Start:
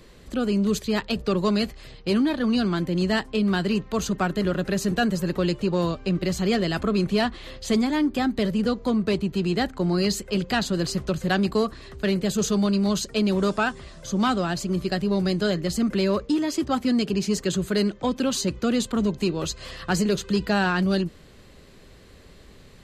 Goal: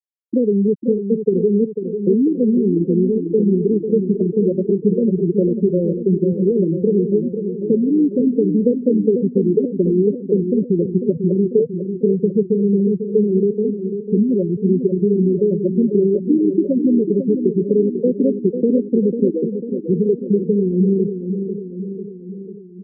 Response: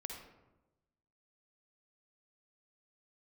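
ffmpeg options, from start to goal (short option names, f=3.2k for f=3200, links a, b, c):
-filter_complex "[0:a]lowshelf=f=650:t=q:w=3:g=12.5,acompressor=threshold=-10dB:ratio=12,aeval=exprs='0.75*(cos(1*acos(clip(val(0)/0.75,-1,1)))-cos(1*PI/2))+0.00596*(cos(4*acos(clip(val(0)/0.75,-1,1)))-cos(4*PI/2))':c=same,afftfilt=real='re*gte(hypot(re,im),1)':imag='im*gte(hypot(re,im),1)':win_size=1024:overlap=0.75,asplit=2[a][b];[b]aecho=0:1:496|992|1488|1984|2480|2976|3472:0.398|0.235|0.139|0.0818|0.0482|0.0285|0.0168[c];[a][c]amix=inputs=2:normalize=0,volume=-2dB"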